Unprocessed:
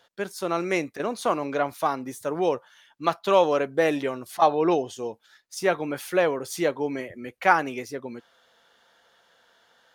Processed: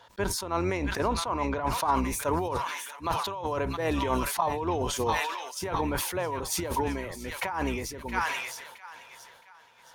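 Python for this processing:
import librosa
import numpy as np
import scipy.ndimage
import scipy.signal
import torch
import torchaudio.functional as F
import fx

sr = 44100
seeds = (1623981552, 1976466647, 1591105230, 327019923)

y = fx.octave_divider(x, sr, octaves=2, level_db=-1.0)
y = fx.echo_wet_highpass(y, sr, ms=668, feedback_pct=48, hz=1800.0, wet_db=-9)
y = y * (1.0 - 0.89 / 2.0 + 0.89 / 2.0 * np.cos(2.0 * np.pi * 1.2 * (np.arange(len(y)) / sr)))
y = fx.high_shelf(y, sr, hz=7000.0, db=fx.steps((0.0, -5.0), (0.76, -11.0), (1.94, 3.5)))
y = fx.over_compress(y, sr, threshold_db=-31.0, ratio=-1.0)
y = fx.peak_eq(y, sr, hz=960.0, db=13.5, octaves=0.28)
y = fx.sustainer(y, sr, db_per_s=41.0)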